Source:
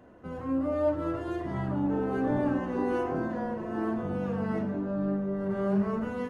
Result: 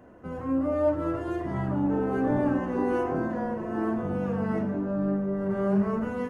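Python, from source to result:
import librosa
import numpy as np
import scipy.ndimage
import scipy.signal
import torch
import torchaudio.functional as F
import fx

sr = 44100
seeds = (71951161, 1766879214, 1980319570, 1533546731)

y = fx.peak_eq(x, sr, hz=3800.0, db=-6.0, octaves=0.77)
y = y * librosa.db_to_amplitude(2.5)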